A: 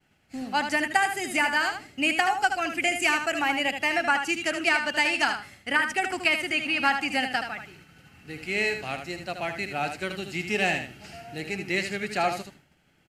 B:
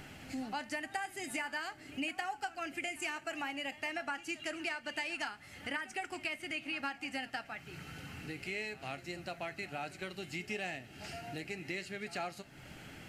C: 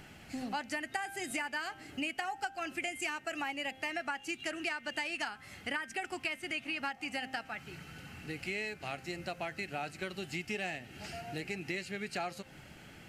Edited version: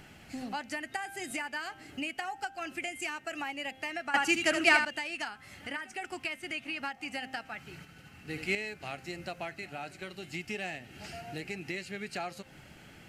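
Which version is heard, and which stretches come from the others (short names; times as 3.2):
C
4.14–4.85 from A
5.59–6.01 from B
7.85–8.55 from A
9.51–10.34 from B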